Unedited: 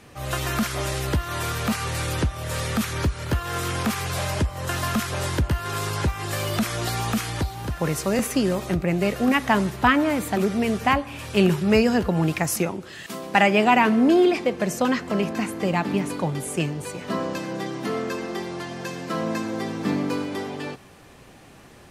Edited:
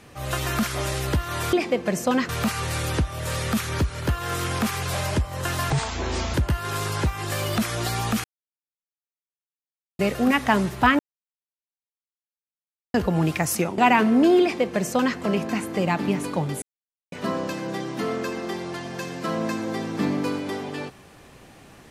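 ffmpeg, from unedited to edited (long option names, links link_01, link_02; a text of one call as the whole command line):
ffmpeg -i in.wav -filter_complex "[0:a]asplit=12[link_01][link_02][link_03][link_04][link_05][link_06][link_07][link_08][link_09][link_10][link_11][link_12];[link_01]atrim=end=1.532[link_13];[link_02]atrim=start=14.268:end=15.032[link_14];[link_03]atrim=start=1.528:end=4.944[link_15];[link_04]atrim=start=4.94:end=5.35,asetpts=PTS-STARTPTS,asetrate=28224,aresample=44100[link_16];[link_05]atrim=start=5.346:end=7.25,asetpts=PTS-STARTPTS,afade=type=out:start_time=1.9:duration=0.004:curve=hsin[link_17];[link_06]atrim=start=7.25:end=9,asetpts=PTS-STARTPTS,volume=0[link_18];[link_07]atrim=start=9:end=10,asetpts=PTS-STARTPTS,afade=type=in:duration=0.004:curve=hsin,afade=type=out:start_time=0.996:duration=0.004:curve=hsin[link_19];[link_08]atrim=start=10:end=11.95,asetpts=PTS-STARTPTS,volume=0[link_20];[link_09]atrim=start=11.95:end=12.792,asetpts=PTS-STARTPTS,afade=type=in:duration=0.004:curve=hsin[link_21];[link_10]atrim=start=13.638:end=16.48,asetpts=PTS-STARTPTS,afade=type=out:start_time=2.838:duration=0.004:curve=hsin[link_22];[link_11]atrim=start=16.48:end=16.98,asetpts=PTS-STARTPTS,volume=0[link_23];[link_12]atrim=start=16.98,asetpts=PTS-STARTPTS,afade=type=in:duration=0.004:curve=hsin[link_24];[link_13][link_14]acrossfade=duration=0.004:curve1=hsin:curve2=hsin[link_25];[link_25][link_15]acrossfade=duration=0.004:curve1=hsin:curve2=hsin[link_26];[link_26][link_16]acrossfade=duration=0.004:curve1=hsin:curve2=hsin[link_27];[link_17][link_18][link_19][link_20][link_21]concat=n=5:v=0:a=1[link_28];[link_27][link_28]acrossfade=duration=0.004:curve1=hsin:curve2=hsin[link_29];[link_22][link_23][link_24]concat=n=3:v=0:a=1[link_30];[link_29][link_30]acrossfade=duration=0.004:curve1=hsin:curve2=hsin" out.wav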